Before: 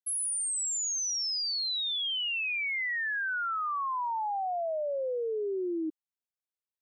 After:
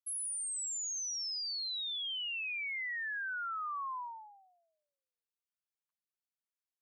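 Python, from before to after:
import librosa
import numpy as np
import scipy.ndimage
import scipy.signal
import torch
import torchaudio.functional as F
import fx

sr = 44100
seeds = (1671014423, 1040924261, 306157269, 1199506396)

y = scipy.signal.sosfilt(scipy.signal.butter(12, 980.0, 'highpass', fs=sr, output='sos'), x)
y = y * librosa.db_to_amplitude(-6.5)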